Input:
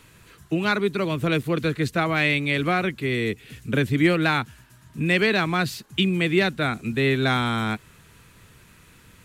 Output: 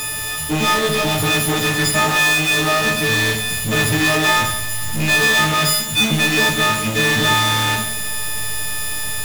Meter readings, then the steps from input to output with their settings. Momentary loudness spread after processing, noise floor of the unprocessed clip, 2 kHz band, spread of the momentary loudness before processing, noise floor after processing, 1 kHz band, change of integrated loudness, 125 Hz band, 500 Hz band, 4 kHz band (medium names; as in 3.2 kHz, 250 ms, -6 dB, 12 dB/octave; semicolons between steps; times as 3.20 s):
9 LU, -53 dBFS, +9.0 dB, 8 LU, -24 dBFS, +8.5 dB, +7.0 dB, +3.5 dB, +2.5 dB, +12.5 dB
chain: partials quantised in pitch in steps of 6 st; in parallel at -10.5 dB: hysteresis with a dead band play -19 dBFS; on the sum: power-law waveshaper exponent 0.35; Schroeder reverb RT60 0.8 s, combs from 27 ms, DRR 3.5 dB; trim -7.5 dB